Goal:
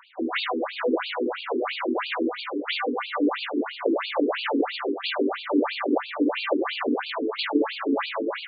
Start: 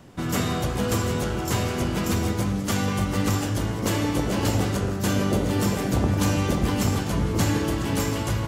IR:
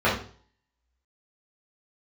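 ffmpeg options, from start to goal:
-filter_complex "[0:a]aeval=exprs='val(0)+0.02*(sin(2*PI*50*n/s)+sin(2*PI*2*50*n/s)/2+sin(2*PI*3*50*n/s)/3+sin(2*PI*4*50*n/s)/4+sin(2*PI*5*50*n/s)/5)':channel_layout=same,asplit=2[link_01][link_02];[1:a]atrim=start_sample=2205[link_03];[link_02][link_03]afir=irnorm=-1:irlink=0,volume=-30.5dB[link_04];[link_01][link_04]amix=inputs=2:normalize=0,afftfilt=real='re*between(b*sr/1024,310*pow(3400/310,0.5+0.5*sin(2*PI*3*pts/sr))/1.41,310*pow(3400/310,0.5+0.5*sin(2*PI*3*pts/sr))*1.41)':imag='im*between(b*sr/1024,310*pow(3400/310,0.5+0.5*sin(2*PI*3*pts/sr))/1.41,310*pow(3400/310,0.5+0.5*sin(2*PI*3*pts/sr))*1.41)':win_size=1024:overlap=0.75,volume=8.5dB"

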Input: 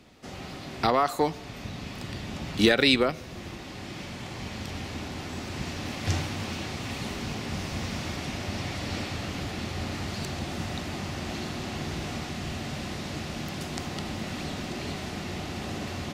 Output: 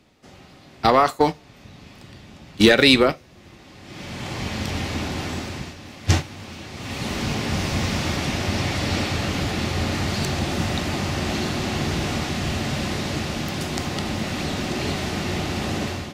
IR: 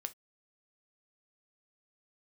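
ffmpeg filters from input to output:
-filter_complex "[0:a]acontrast=83,agate=range=-16dB:threshold=-19dB:ratio=16:detection=peak,asplit=2[link_01][link_02];[1:a]atrim=start_sample=2205[link_03];[link_02][link_03]afir=irnorm=-1:irlink=0,volume=7.5dB[link_04];[link_01][link_04]amix=inputs=2:normalize=0,dynaudnorm=framelen=480:gausssize=3:maxgain=11.5dB,volume=-2.5dB"

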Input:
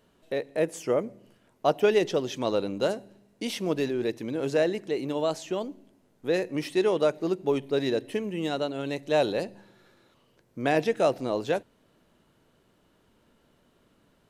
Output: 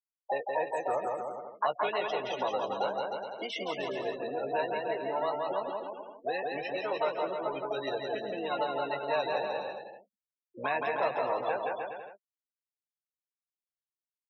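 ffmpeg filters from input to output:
ffmpeg -i in.wav -filter_complex "[0:a]asplit=2[link_01][link_02];[link_02]asetrate=66075,aresample=44100,atempo=0.66742,volume=-8dB[link_03];[link_01][link_03]amix=inputs=2:normalize=0,afftfilt=real='re*gte(hypot(re,im),0.0355)':imag='im*gte(hypot(re,im),0.0355)':win_size=1024:overlap=0.75,acrossover=split=160|3000[link_04][link_05][link_06];[link_05]acompressor=threshold=-31dB:ratio=6[link_07];[link_04][link_07][link_06]amix=inputs=3:normalize=0,aecho=1:1:170|306|414.8|501.8|571.5:0.631|0.398|0.251|0.158|0.1,asplit=2[link_08][link_09];[link_09]alimiter=level_in=1.5dB:limit=-24dB:level=0:latency=1:release=94,volume=-1.5dB,volume=0.5dB[link_10];[link_08][link_10]amix=inputs=2:normalize=0,acrossover=split=580 2300:gain=0.0708 1 0.2[link_11][link_12][link_13];[link_11][link_12][link_13]amix=inputs=3:normalize=0,asplit=2[link_14][link_15];[link_15]adelay=15,volume=-9dB[link_16];[link_14][link_16]amix=inputs=2:normalize=0,volume=2.5dB" out.wav

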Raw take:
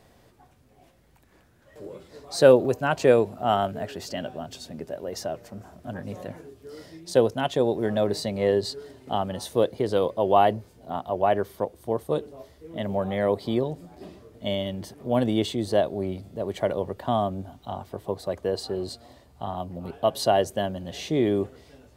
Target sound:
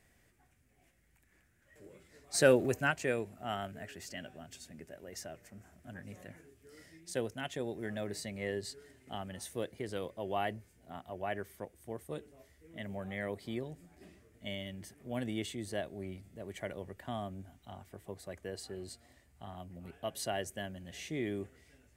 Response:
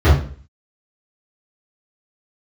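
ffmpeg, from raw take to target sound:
-filter_complex "[0:a]equalizer=frequency=125:width_type=o:width=1:gain=-4,equalizer=frequency=250:width_type=o:width=1:gain=-3,equalizer=frequency=500:width_type=o:width=1:gain=-7,equalizer=frequency=1000:width_type=o:width=1:gain=-10,equalizer=frequency=2000:width_type=o:width=1:gain=8,equalizer=frequency=4000:width_type=o:width=1:gain=-8,equalizer=frequency=8000:width_type=o:width=1:gain=5,asplit=3[link_01][link_02][link_03];[link_01]afade=type=out:start_time=2.33:duration=0.02[link_04];[link_02]acontrast=85,afade=type=in:start_time=2.33:duration=0.02,afade=type=out:start_time=2.9:duration=0.02[link_05];[link_03]afade=type=in:start_time=2.9:duration=0.02[link_06];[link_04][link_05][link_06]amix=inputs=3:normalize=0,volume=-8dB"

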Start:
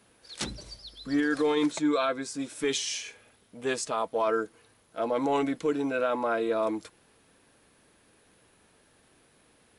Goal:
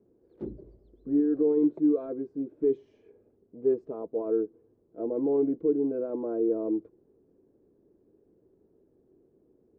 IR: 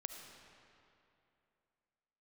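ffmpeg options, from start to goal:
-af "lowpass=frequency=380:width_type=q:width=4.3,volume=-4.5dB"

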